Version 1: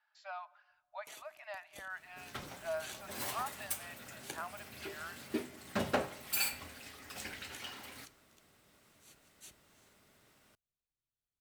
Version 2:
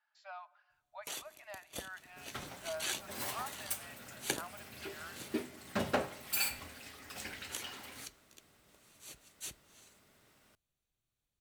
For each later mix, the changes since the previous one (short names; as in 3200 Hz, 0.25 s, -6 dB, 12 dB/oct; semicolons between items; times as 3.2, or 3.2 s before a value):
speech -3.5 dB; first sound +10.5 dB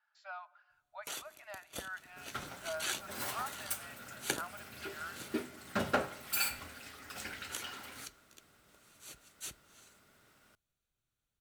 master: add bell 1400 Hz +8 dB 0.25 oct